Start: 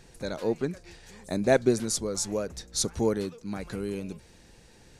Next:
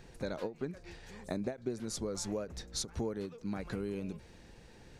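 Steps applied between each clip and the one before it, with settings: bell 9900 Hz -9 dB 1.9 oct; compressor 6:1, threshold -33 dBFS, peak gain reduction 15.5 dB; ending taper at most 220 dB/s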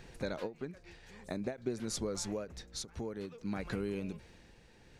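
bell 2400 Hz +3.5 dB 1.5 oct; tremolo 0.53 Hz, depth 53%; gain +1 dB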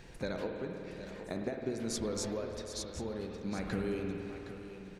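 echo 0.765 s -11 dB; spring tank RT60 3.2 s, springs 52 ms, chirp 60 ms, DRR 2.5 dB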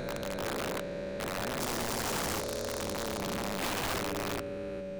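stepped spectrum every 0.4 s; whine 570 Hz -44 dBFS; wrapped overs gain 33.5 dB; gain +6 dB

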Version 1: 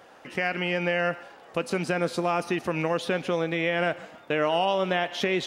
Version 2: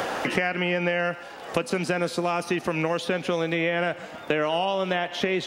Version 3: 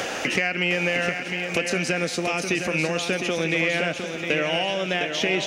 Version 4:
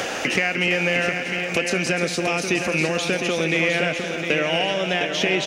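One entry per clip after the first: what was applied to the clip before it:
three-band squash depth 100%
fifteen-band EQ 1000 Hz -7 dB, 2500 Hz +7 dB, 6300 Hz +10 dB; swung echo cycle 0.944 s, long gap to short 3:1, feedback 31%, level -7 dB; soft clip -8.5 dBFS, distortion -26 dB
echo 0.301 s -10 dB; gain +2 dB

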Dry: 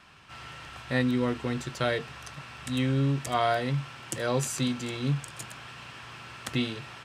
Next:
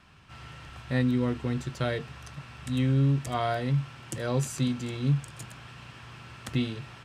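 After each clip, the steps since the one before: low shelf 240 Hz +10.5 dB; gain -4.5 dB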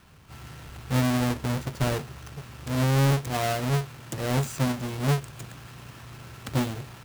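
half-waves squared off; gain -2.5 dB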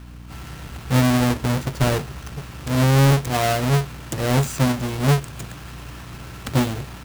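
hum 60 Hz, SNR 18 dB; gain +6.5 dB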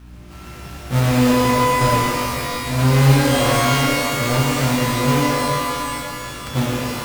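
shimmer reverb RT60 2.3 s, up +12 st, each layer -2 dB, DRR -4 dB; gain -5 dB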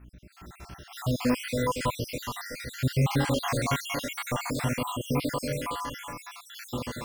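random spectral dropouts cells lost 61%; gain -8 dB

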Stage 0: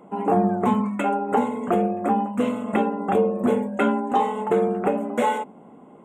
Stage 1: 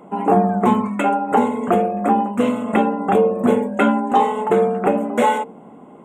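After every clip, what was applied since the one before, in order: de-hum 50.81 Hz, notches 11; gain +5.5 dB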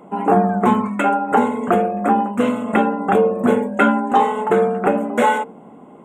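dynamic EQ 1500 Hz, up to +6 dB, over -36 dBFS, Q 2.5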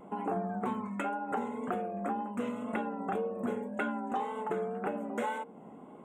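compressor 2.5:1, threshold -28 dBFS, peak gain reduction 12.5 dB; vibrato 1.9 Hz 44 cents; gain -8 dB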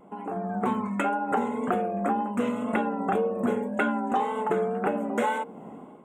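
AGC gain up to 10 dB; gain -2 dB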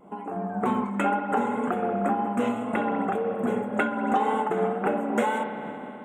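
spring tank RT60 3.2 s, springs 60 ms, chirp 35 ms, DRR 6.5 dB; noise-modulated level, depth 55%; gain +3.5 dB

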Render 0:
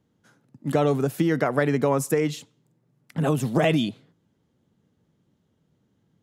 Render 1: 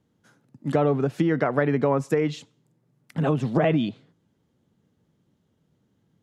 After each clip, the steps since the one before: treble ducked by the level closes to 2000 Hz, closed at -16.5 dBFS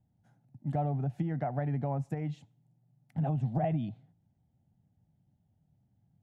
EQ curve 120 Hz 0 dB, 460 Hz -21 dB, 760 Hz -2 dB, 1100 Hz -22 dB, 1900 Hz -17 dB, 4800 Hz -23 dB, 8900 Hz -20 dB; in parallel at -2.5 dB: compressor, threshold -37 dBFS, peak gain reduction 12.5 dB; on the sum: gain -3 dB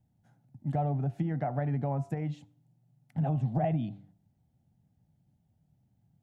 de-hum 98.46 Hz, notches 15; gain +1.5 dB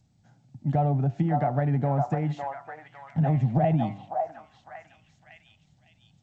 delay with a stepping band-pass 0.555 s, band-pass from 940 Hz, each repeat 0.7 oct, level 0 dB; gain +6 dB; G.722 64 kbps 16000 Hz

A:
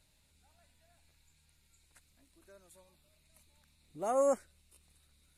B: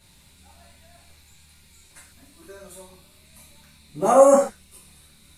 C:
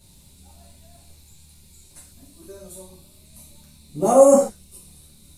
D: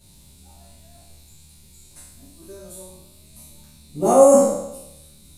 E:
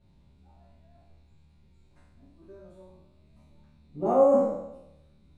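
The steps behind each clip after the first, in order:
non-linear reverb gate 0.17 s falling, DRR -7 dB; gain +9 dB
bell 1700 Hz -14.5 dB 1.9 oct; gain +5 dB
spectral trails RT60 0.86 s; gain -1 dB
LPF 1800 Hz 12 dB/oct; gain -8 dB

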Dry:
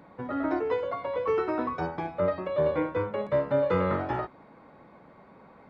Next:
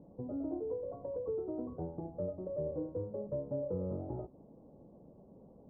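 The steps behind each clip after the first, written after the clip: inverse Chebyshev low-pass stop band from 2700 Hz, stop band 70 dB; low shelf 99 Hz +7 dB; compressor 2:1, threshold -37 dBFS, peak gain reduction 9 dB; gain -3 dB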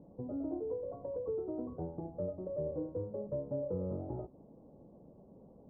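nothing audible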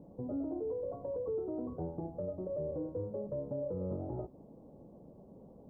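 limiter -32.5 dBFS, peak gain reduction 6 dB; gain +2.5 dB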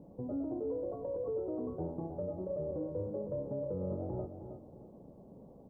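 feedback echo 0.316 s, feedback 27%, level -8.5 dB

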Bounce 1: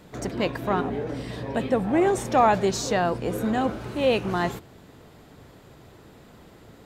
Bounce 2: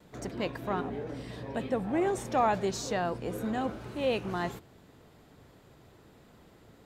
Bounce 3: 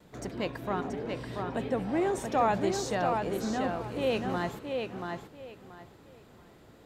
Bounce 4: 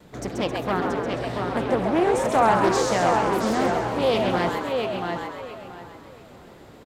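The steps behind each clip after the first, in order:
gate with hold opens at -44 dBFS; gain -7.5 dB
tape echo 0.683 s, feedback 24%, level -3.5 dB, low-pass 5200 Hz
frequency-shifting echo 0.133 s, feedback 53%, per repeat +130 Hz, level -5 dB; Doppler distortion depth 0.26 ms; gain +7 dB

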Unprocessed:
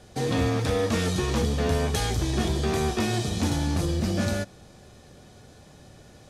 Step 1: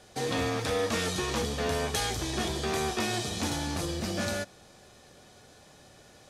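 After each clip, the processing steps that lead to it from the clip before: low shelf 320 Hz -11 dB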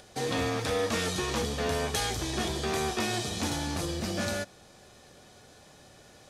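upward compressor, threshold -51 dBFS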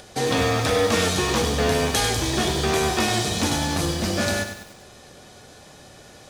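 lo-fi delay 98 ms, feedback 55%, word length 8-bit, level -8 dB; gain +8 dB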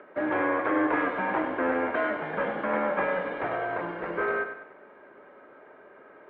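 mistuned SSB -170 Hz 530–2100 Hz

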